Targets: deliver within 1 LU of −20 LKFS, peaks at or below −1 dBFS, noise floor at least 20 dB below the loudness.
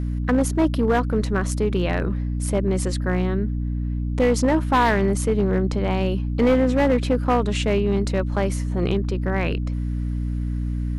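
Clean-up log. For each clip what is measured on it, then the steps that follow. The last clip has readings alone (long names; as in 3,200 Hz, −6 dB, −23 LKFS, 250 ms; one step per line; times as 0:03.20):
share of clipped samples 1.2%; peaks flattened at −12.5 dBFS; mains hum 60 Hz; hum harmonics up to 300 Hz; level of the hum −22 dBFS; integrated loudness −22.0 LKFS; sample peak −12.5 dBFS; target loudness −20.0 LKFS
→ clipped peaks rebuilt −12.5 dBFS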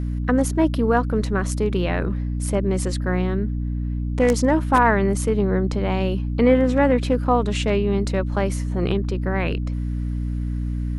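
share of clipped samples 0.0%; mains hum 60 Hz; hum harmonics up to 300 Hz; level of the hum −22 dBFS
→ mains-hum notches 60/120/180/240/300 Hz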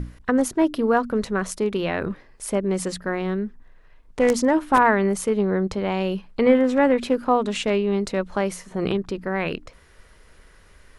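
mains hum none found; integrated loudness −22.5 LKFS; sample peak −4.0 dBFS; target loudness −20.0 LKFS
→ level +2.5 dB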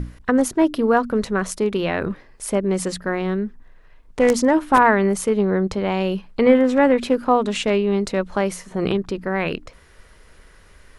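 integrated loudness −20.0 LKFS; sample peak −1.5 dBFS; background noise floor −49 dBFS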